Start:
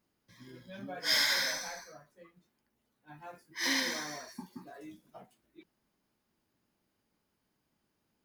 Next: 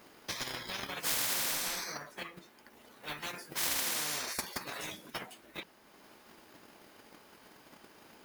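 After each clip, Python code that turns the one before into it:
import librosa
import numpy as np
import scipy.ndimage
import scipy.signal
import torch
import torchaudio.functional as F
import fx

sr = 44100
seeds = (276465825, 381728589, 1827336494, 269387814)

y = fx.transient(x, sr, attack_db=11, sustain_db=-4)
y = fx.bass_treble(y, sr, bass_db=-14, treble_db=-5)
y = fx.spectral_comp(y, sr, ratio=10.0)
y = F.gain(torch.from_numpy(y), -5.5).numpy()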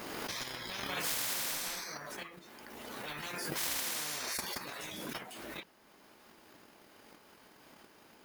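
y = fx.pre_swell(x, sr, db_per_s=22.0)
y = F.gain(torch.from_numpy(y), -3.0).numpy()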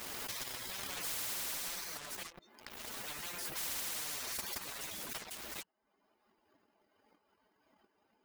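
y = fx.bin_expand(x, sr, power=2.0)
y = fx.leveller(y, sr, passes=3)
y = fx.spectral_comp(y, sr, ratio=4.0)
y = F.gain(torch.from_numpy(y), -1.0).numpy()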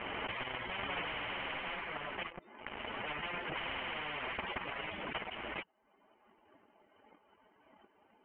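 y = scipy.signal.sosfilt(scipy.signal.cheby1(6, 3, 3100.0, 'lowpass', fs=sr, output='sos'), x)
y = F.gain(torch.from_numpy(y), 9.0).numpy()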